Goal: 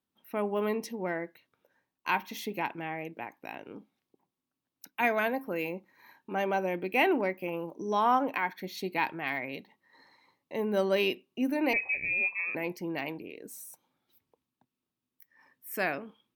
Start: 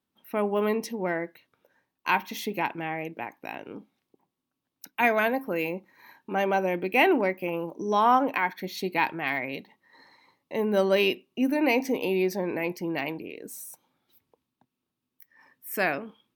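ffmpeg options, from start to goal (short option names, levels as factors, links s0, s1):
-filter_complex "[0:a]asettb=1/sr,asplit=3[s0][s1][s2];[s0]atrim=end=11.734[s3];[s1]atrim=start=11.73:end=12.55,asetpts=PTS-STARTPTS,afade=t=in:d=0.004:c=qsin,afade=t=out:st=0.816:d=0.004:c=qsin,lowpass=f=2400:t=q:w=0.5098,lowpass=f=2400:t=q:w=0.6013,lowpass=f=2400:t=q:w=0.9,lowpass=f=2400:t=q:w=2.563,afreqshift=-2800[s4];[s2]atrim=start=12.546[s5];[s3][s4]acrossfade=d=0.004:c1=hsin:c2=qsin[s6];[s6][s5]acrossfade=d=0.004:c1=qsin:c2=hsin,volume=0.596"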